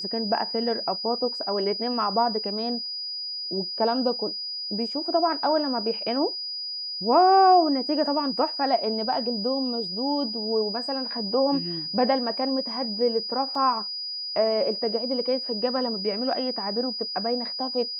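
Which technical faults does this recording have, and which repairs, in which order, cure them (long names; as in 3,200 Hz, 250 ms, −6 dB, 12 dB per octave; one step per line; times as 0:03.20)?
whistle 4,900 Hz −30 dBFS
0:13.55: drop-out 2.9 ms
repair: notch filter 4,900 Hz, Q 30
repair the gap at 0:13.55, 2.9 ms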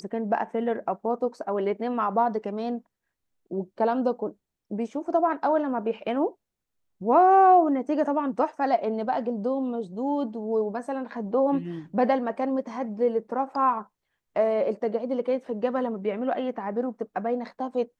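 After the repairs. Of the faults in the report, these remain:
none of them is left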